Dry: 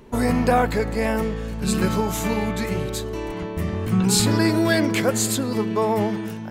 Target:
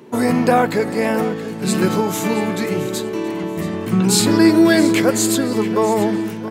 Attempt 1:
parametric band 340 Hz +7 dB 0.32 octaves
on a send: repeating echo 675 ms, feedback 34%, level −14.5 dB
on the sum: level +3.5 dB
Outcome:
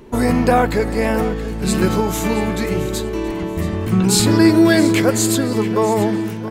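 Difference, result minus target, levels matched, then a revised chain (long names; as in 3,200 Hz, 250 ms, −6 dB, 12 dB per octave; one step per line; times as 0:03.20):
125 Hz band +3.5 dB
high-pass filter 130 Hz 24 dB per octave
parametric band 340 Hz +7 dB 0.32 octaves
on a send: repeating echo 675 ms, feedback 34%, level −14.5 dB
on the sum: level +3.5 dB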